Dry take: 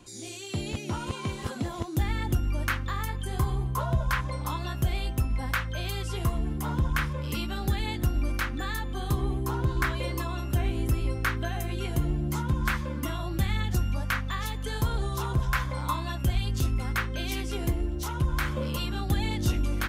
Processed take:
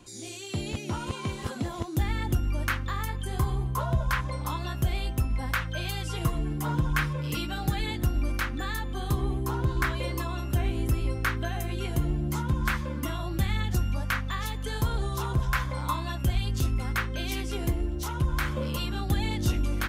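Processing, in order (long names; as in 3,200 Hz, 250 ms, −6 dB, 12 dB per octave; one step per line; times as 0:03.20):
0:05.61–0:07.91: comb filter 6.4 ms, depth 55%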